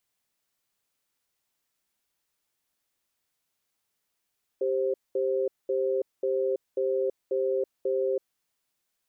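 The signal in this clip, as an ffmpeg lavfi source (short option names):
-f lavfi -i "aevalsrc='0.0473*(sin(2*PI*392*t)+sin(2*PI*526*t))*clip(min(mod(t,0.54),0.33-mod(t,0.54))/0.005,0,1)':d=3.78:s=44100"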